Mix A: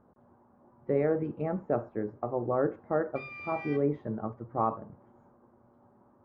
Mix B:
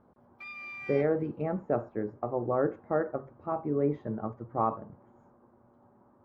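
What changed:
background: entry −2.75 s
master: remove high-frequency loss of the air 80 metres

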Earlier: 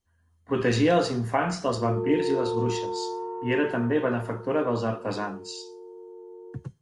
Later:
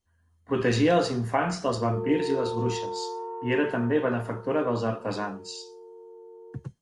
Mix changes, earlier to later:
background: add Butterworth high-pass 390 Hz
reverb: off

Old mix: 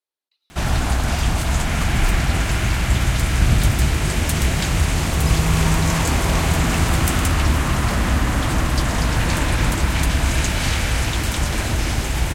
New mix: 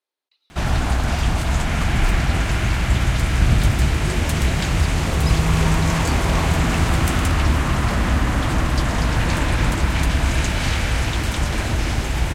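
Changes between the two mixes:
speech +6.5 dB
master: add high-shelf EQ 6,600 Hz −8 dB

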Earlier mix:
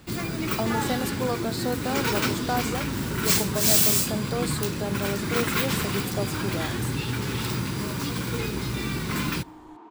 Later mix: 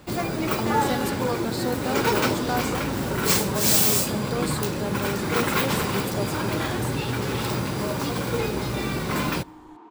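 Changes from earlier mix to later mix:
first sound: add parametric band 650 Hz +14.5 dB 1 octave
master: add notch filter 660 Hz, Q 12

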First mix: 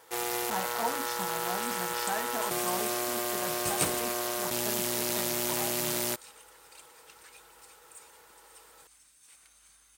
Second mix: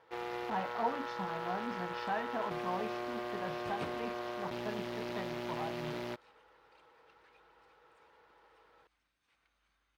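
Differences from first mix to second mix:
first sound −4.5 dB
second sound −8.0 dB
master: add high-frequency loss of the air 310 metres

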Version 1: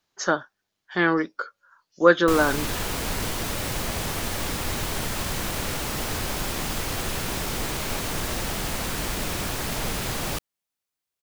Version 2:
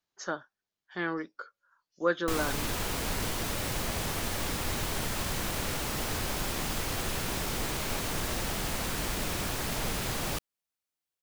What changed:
speech −11.5 dB
background −4.0 dB

